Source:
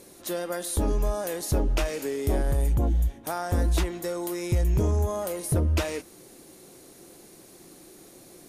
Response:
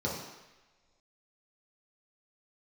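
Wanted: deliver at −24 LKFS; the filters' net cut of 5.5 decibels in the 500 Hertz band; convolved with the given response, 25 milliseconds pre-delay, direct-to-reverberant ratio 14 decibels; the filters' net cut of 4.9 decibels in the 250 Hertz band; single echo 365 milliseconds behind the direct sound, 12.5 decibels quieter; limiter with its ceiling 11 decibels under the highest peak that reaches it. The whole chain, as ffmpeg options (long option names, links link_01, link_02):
-filter_complex "[0:a]equalizer=frequency=250:width_type=o:gain=-5,equalizer=frequency=500:width_type=o:gain=-5.5,alimiter=level_in=3dB:limit=-24dB:level=0:latency=1,volume=-3dB,aecho=1:1:365:0.237,asplit=2[link_01][link_02];[1:a]atrim=start_sample=2205,adelay=25[link_03];[link_02][link_03]afir=irnorm=-1:irlink=0,volume=-21dB[link_04];[link_01][link_04]amix=inputs=2:normalize=0,volume=11.5dB"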